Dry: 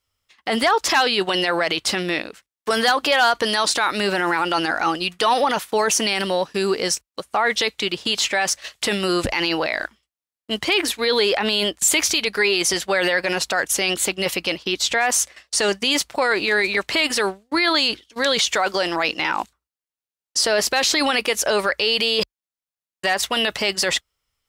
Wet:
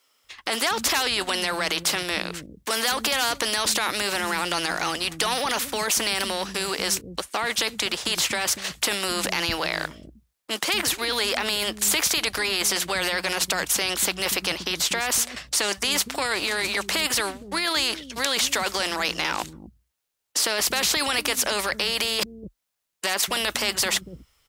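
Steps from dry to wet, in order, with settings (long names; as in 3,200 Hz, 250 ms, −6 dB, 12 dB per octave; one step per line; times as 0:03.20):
multiband delay without the direct sound highs, lows 240 ms, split 220 Hz
every bin compressed towards the loudest bin 2 to 1
level +1 dB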